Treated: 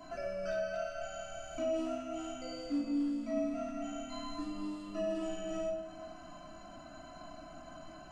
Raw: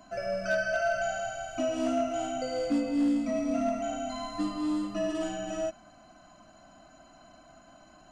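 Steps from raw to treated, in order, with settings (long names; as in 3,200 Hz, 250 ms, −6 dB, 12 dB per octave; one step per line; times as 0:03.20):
downward compressor 2.5 to 1, threshold −45 dBFS, peak gain reduction 14 dB
on a send: delay that swaps between a low-pass and a high-pass 113 ms, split 1,000 Hz, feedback 69%, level −11.5 dB
on the sum: rectangular room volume 660 cubic metres, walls furnished, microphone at 3 metres
level −1.5 dB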